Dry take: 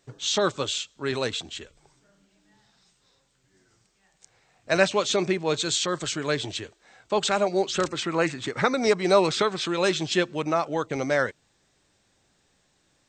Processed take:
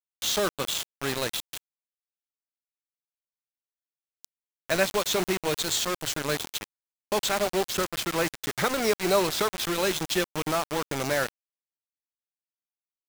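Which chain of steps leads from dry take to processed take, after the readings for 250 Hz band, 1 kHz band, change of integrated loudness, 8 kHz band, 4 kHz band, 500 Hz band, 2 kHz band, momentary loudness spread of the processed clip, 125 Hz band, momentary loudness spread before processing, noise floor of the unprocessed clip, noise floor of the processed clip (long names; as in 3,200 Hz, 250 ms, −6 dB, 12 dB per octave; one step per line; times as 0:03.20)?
−3.5 dB, −2.5 dB, −2.0 dB, +1.5 dB, −1.0 dB, −3.5 dB, −2.0 dB, 6 LU, −3.0 dB, 8 LU, −68 dBFS, below −85 dBFS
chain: high-shelf EQ 4,500 Hz +2.5 dB
in parallel at 0 dB: downward compressor 6 to 1, threshold −32 dBFS, peak gain reduction 17.5 dB
on the sum: bit reduction 4 bits
level −5.5 dB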